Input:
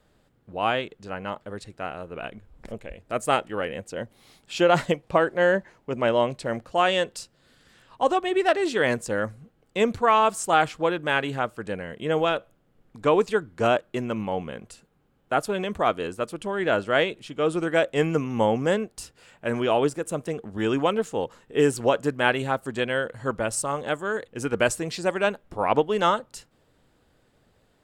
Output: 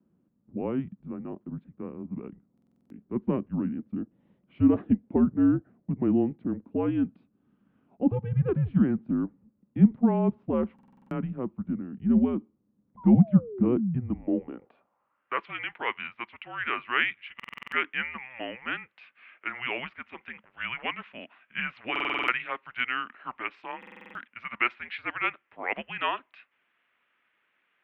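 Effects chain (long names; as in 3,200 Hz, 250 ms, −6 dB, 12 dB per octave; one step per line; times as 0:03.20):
sound drawn into the spectrogram fall, 0:12.97–0:14.52, 200–1,300 Hz −32 dBFS
single-sideband voice off tune −250 Hz 280–3,400 Hz
band-pass filter sweep 200 Hz → 2,100 Hz, 0:14.09–0:15.42
buffer that repeats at 0:02.53/0:10.74/0:17.35/0:21.91/0:23.78, samples 2,048, times 7
level +6 dB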